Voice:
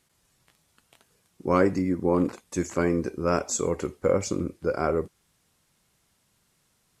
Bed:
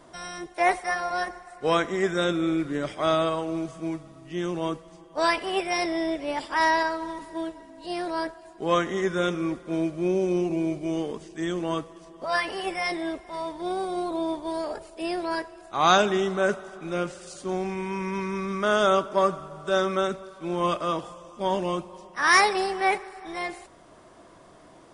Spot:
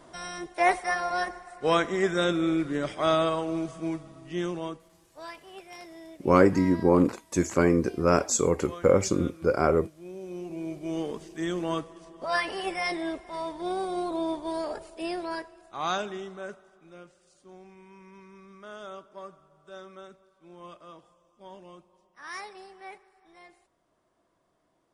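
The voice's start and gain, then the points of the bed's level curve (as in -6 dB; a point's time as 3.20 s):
4.80 s, +2.5 dB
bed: 4.41 s -0.5 dB
5.21 s -19 dB
10.01 s -19 dB
11.06 s -1.5 dB
14.92 s -1.5 dB
17.08 s -21 dB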